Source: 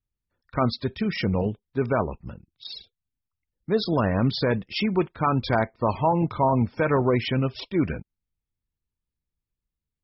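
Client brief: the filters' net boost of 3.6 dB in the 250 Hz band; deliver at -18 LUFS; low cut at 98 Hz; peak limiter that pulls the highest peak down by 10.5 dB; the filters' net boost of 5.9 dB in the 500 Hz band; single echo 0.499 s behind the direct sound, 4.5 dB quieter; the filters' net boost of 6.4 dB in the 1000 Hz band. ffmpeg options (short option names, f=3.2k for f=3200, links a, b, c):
-af "highpass=98,equalizer=f=250:t=o:g=3,equalizer=f=500:t=o:g=5,equalizer=f=1k:t=o:g=6,alimiter=limit=-13.5dB:level=0:latency=1,aecho=1:1:499:0.596,volume=6dB"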